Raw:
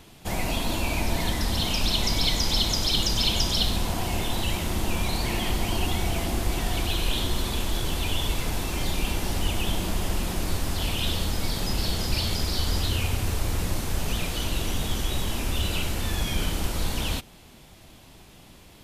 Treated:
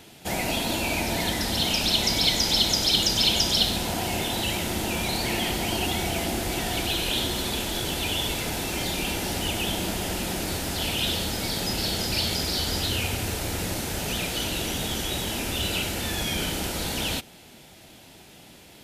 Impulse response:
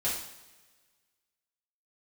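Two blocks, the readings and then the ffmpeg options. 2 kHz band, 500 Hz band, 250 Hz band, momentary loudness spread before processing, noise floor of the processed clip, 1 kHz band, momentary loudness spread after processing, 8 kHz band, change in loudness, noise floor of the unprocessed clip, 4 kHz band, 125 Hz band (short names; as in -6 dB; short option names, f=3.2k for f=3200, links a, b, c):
+3.5 dB, +2.5 dB, +1.5 dB, 6 LU, -49 dBFS, +1.5 dB, 8 LU, +3.5 dB, +2.0 dB, -50 dBFS, +3.5 dB, -3.5 dB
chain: -af "highpass=f=190:p=1,equalizer=f=1.1k:t=o:w=0.23:g=-10,volume=3.5dB"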